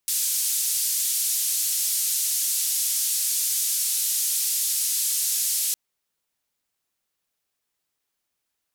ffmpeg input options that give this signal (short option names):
-f lavfi -i "anoisesrc=c=white:d=5.66:r=44100:seed=1,highpass=f=5600,lowpass=f=13000,volume=-14.7dB"